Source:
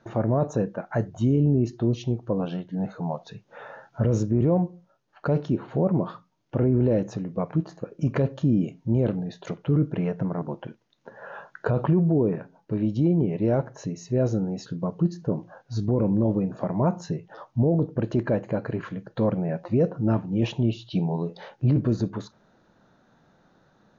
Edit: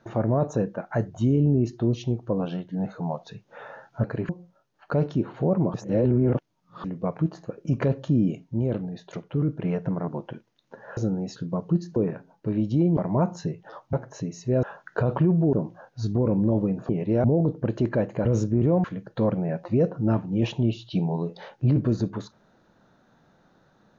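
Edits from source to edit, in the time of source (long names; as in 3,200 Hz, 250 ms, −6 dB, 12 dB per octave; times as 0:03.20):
0:04.04–0:04.63: swap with 0:18.59–0:18.84
0:06.08–0:07.18: reverse
0:08.78–0:09.99: clip gain −3 dB
0:11.31–0:12.21: swap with 0:14.27–0:15.26
0:13.22–0:13.57: swap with 0:16.62–0:17.58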